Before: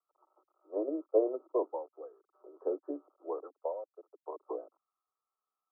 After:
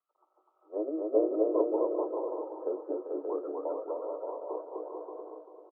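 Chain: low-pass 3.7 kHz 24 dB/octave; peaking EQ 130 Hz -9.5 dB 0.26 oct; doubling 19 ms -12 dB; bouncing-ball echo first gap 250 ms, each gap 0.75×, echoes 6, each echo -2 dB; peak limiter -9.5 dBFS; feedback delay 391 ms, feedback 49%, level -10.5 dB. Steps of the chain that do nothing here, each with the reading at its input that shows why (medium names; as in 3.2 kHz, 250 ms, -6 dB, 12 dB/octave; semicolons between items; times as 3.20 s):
low-pass 3.7 kHz: input has nothing above 1.1 kHz; peaking EQ 130 Hz: input has nothing below 250 Hz; peak limiter -9.5 dBFS: peak at its input -14.5 dBFS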